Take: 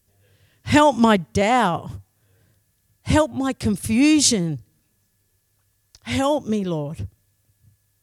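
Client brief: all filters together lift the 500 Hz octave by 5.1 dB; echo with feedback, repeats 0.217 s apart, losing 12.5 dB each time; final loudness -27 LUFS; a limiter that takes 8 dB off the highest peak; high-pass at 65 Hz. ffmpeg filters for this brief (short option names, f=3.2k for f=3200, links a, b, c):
-af "highpass=65,equalizer=f=500:t=o:g=6.5,alimiter=limit=-8dB:level=0:latency=1,aecho=1:1:217|434|651:0.237|0.0569|0.0137,volume=-7.5dB"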